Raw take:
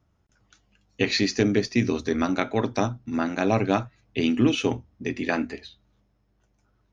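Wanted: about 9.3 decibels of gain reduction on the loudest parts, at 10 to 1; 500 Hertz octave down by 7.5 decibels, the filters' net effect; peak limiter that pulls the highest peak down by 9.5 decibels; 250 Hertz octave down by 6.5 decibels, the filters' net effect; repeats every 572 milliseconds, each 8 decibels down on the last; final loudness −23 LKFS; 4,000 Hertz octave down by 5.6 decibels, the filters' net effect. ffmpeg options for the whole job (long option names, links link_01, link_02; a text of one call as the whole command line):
ffmpeg -i in.wav -af "equalizer=frequency=250:width_type=o:gain=-5.5,equalizer=frequency=500:width_type=o:gain=-8,equalizer=frequency=4000:width_type=o:gain=-7,acompressor=threshold=-30dB:ratio=10,alimiter=level_in=1dB:limit=-24dB:level=0:latency=1,volume=-1dB,aecho=1:1:572|1144|1716|2288|2860:0.398|0.159|0.0637|0.0255|0.0102,volume=15dB" out.wav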